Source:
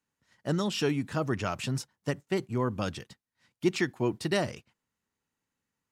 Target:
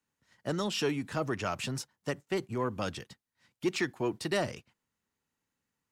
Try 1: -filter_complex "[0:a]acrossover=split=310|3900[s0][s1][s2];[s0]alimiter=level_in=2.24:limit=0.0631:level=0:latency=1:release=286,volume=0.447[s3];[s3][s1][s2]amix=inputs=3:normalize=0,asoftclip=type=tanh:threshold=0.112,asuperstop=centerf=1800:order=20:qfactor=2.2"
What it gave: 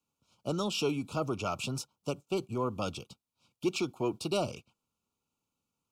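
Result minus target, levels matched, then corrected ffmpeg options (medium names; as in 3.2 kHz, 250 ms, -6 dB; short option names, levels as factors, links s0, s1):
2 kHz band -5.5 dB
-filter_complex "[0:a]acrossover=split=310|3900[s0][s1][s2];[s0]alimiter=level_in=2.24:limit=0.0631:level=0:latency=1:release=286,volume=0.447[s3];[s3][s1][s2]amix=inputs=3:normalize=0,asoftclip=type=tanh:threshold=0.112"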